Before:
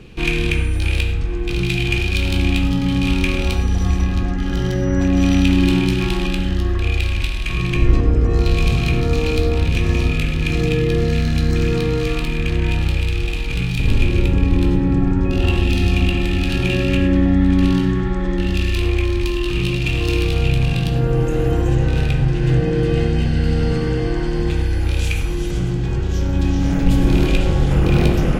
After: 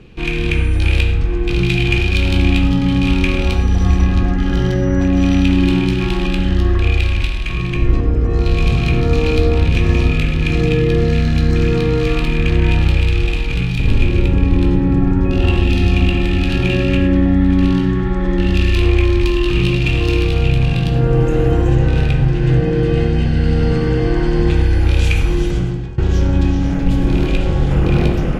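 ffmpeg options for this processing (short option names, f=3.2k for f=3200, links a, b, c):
-filter_complex "[0:a]asplit=2[a][b];[a]atrim=end=25.98,asetpts=PTS-STARTPTS,afade=t=out:st=25.39:d=0.59:silence=0.0944061[c];[b]atrim=start=25.98,asetpts=PTS-STARTPTS,afade=t=in:d=0.004:c=hsin:silence=0.0944061[d];[c][d]concat=n=2:v=0:a=1,lowpass=f=3.9k:p=1,dynaudnorm=f=150:g=7:m=11.5dB,volume=-1dB"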